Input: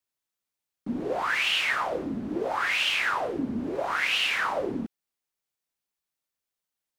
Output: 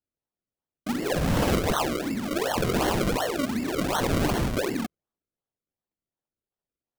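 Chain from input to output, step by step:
low-pass that shuts in the quiet parts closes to 1,000 Hz, open at −26.5 dBFS
in parallel at −5 dB: soft clipping −31 dBFS, distortion −8 dB
on the sum: sample-and-hold swept by an LFO 35×, swing 100% 2.7 Hz
0:01.10–0:01.54: flutter between parallel walls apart 9.1 metres, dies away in 0.55 s

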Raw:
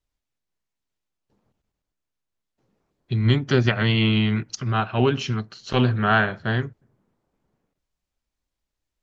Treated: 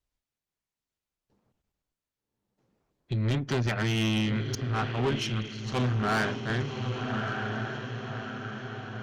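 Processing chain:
feedback delay with all-pass diffusion 1,188 ms, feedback 52%, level −8 dB
tube saturation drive 21 dB, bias 0.35
0:04.55–0:06.50: multiband upward and downward expander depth 70%
level −2 dB

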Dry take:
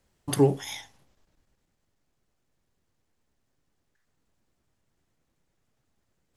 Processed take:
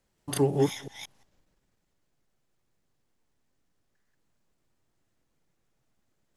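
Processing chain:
delay that plays each chunk backwards 176 ms, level 0 dB
parametric band 68 Hz −5 dB 0.85 octaves
level −4 dB

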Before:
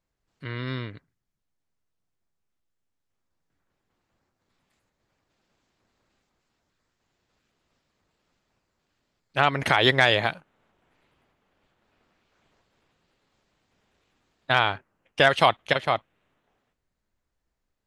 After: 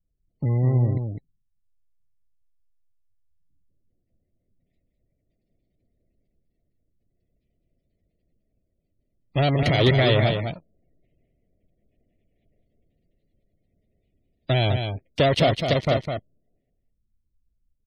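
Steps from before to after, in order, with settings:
elliptic band-stop filter 680–1,900 Hz, stop band 40 dB
spectral tilt −3 dB per octave
in parallel at −4 dB: fuzz pedal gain 33 dB, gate −42 dBFS
on the sum: gate on every frequency bin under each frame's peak −30 dB strong
drawn EQ curve 2,600 Hz 0 dB, 4,700 Hz +10 dB, 7,200 Hz 0 dB
on a send: single-tap delay 205 ms −6.5 dB
on the sum: level −5.5 dB

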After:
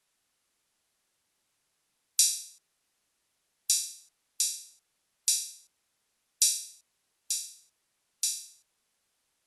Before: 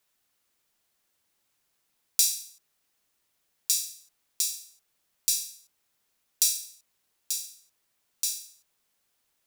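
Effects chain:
linear-phase brick-wall low-pass 12,000 Hz

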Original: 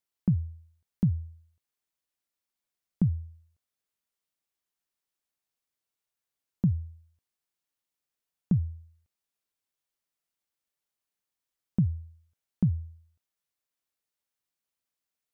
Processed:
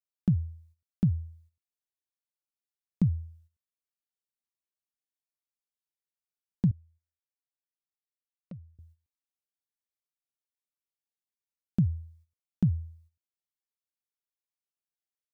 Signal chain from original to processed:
0:06.71–0:08.79: formant resonators in series e
noise gate −58 dBFS, range −12 dB
phaser whose notches keep moving one way rising 1.3 Hz

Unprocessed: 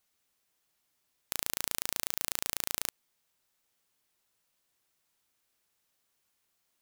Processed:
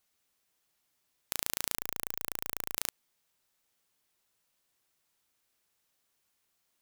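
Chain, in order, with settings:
0:01.75–0:02.77: fuzz pedal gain 44 dB, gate −45 dBFS

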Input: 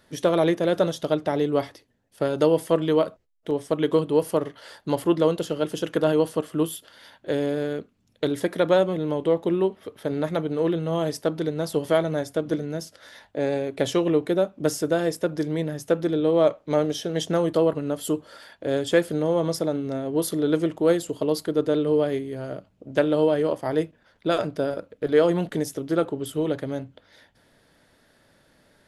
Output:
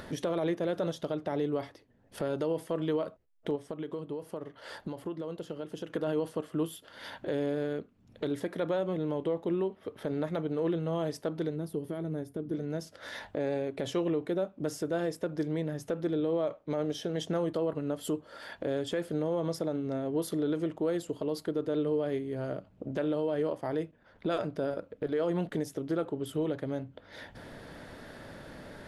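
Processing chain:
high-shelf EQ 4,000 Hz −7 dB
upward compression, threshold −22 dBFS
brickwall limiter −16 dBFS, peak gain reduction 8.5 dB
0:03.55–0:05.90: downward compressor 3 to 1, threshold −30 dBFS, peak gain reduction 8 dB
0:11.56–0:12.55: gain on a spectral selection 470–8,600 Hz −10 dB
one half of a high-frequency compander decoder only
level −6 dB

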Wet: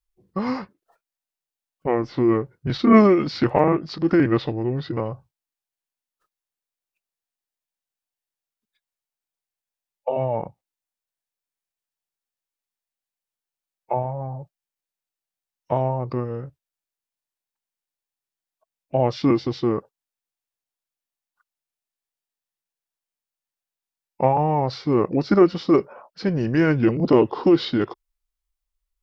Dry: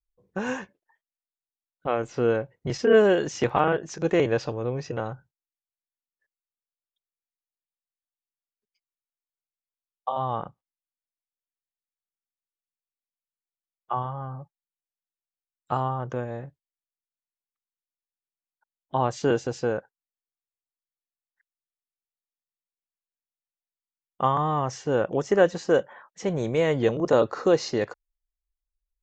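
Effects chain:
formants moved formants −5 semitones
level +4.5 dB

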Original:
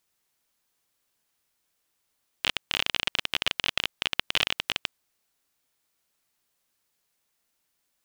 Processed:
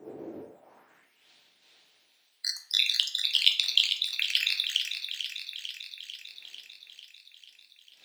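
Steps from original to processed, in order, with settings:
time-frequency cells dropped at random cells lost 76%
wind on the microphone 230 Hz −42 dBFS
parametric band 1,200 Hz −6 dB 0.59 octaves
on a send: feedback echo with a high-pass in the loop 446 ms, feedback 67%, high-pass 700 Hz, level −8 dB
on the sum: rectangular room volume 66 cubic metres, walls mixed, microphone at 0.5 metres
high-pass filter sweep 400 Hz → 3,700 Hz, 0:00.41–0:01.29
level +4.5 dB

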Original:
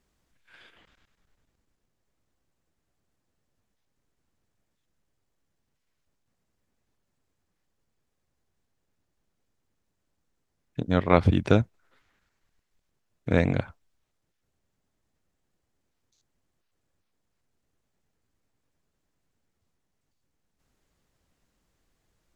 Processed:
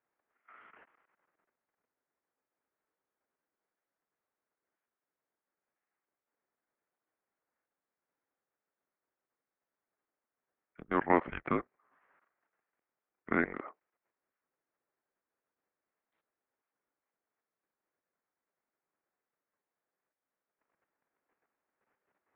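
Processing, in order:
stylus tracing distortion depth 0.039 ms
output level in coarse steps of 12 dB
single-sideband voice off tune −260 Hz 600–2,400 Hz
level +5 dB

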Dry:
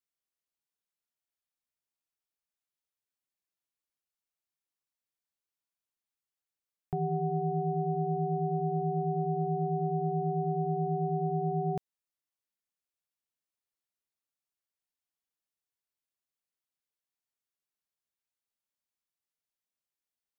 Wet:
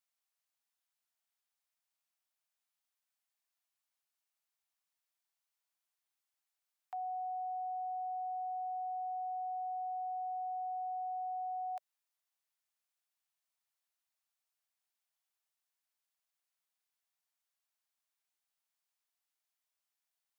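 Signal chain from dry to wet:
Butterworth high-pass 610 Hz 72 dB per octave
brickwall limiter −39 dBFS, peak gain reduction 9 dB
level +3 dB

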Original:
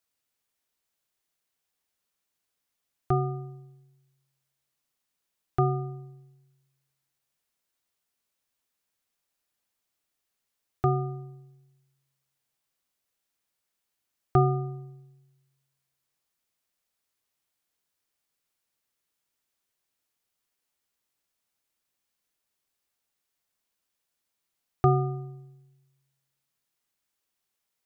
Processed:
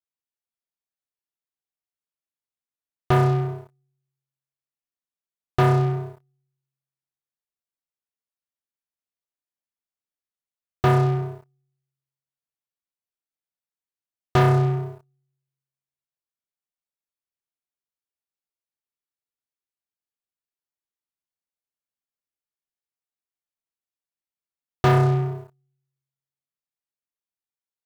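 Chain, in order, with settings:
high-shelf EQ 2,000 Hz −4.5 dB
leveller curve on the samples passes 5
level −4 dB

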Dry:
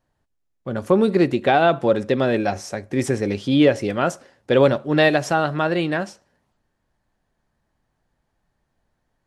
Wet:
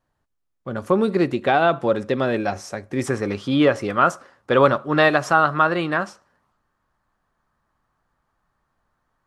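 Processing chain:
parametric band 1,200 Hz +5.5 dB 0.69 octaves, from 0:03.07 +14.5 dB
level −2.5 dB

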